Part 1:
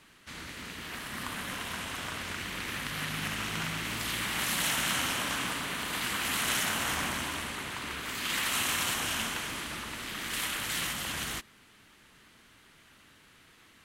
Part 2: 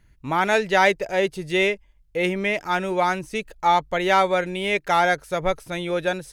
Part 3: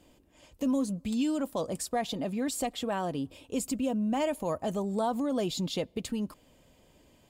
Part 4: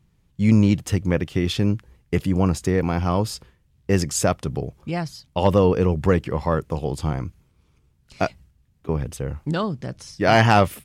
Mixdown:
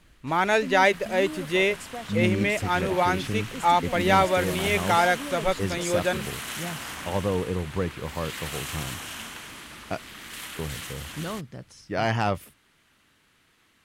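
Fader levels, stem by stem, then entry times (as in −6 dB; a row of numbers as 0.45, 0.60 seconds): −5.0, −2.0, −7.0, −9.5 decibels; 0.00, 0.00, 0.00, 1.70 seconds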